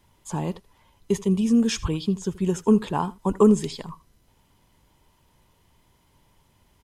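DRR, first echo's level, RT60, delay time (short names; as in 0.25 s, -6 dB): none, -20.5 dB, none, 80 ms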